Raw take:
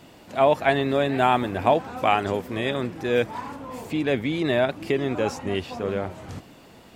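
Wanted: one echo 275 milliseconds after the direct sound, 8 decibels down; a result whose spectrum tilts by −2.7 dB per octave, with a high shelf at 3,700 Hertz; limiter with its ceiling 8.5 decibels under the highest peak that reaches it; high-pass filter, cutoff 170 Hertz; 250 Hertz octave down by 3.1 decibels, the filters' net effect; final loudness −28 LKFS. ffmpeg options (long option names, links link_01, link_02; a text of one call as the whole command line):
ffmpeg -i in.wav -af "highpass=170,equalizer=frequency=250:width_type=o:gain=-3,highshelf=frequency=3700:gain=7.5,alimiter=limit=-12dB:level=0:latency=1,aecho=1:1:275:0.398,volume=-2dB" out.wav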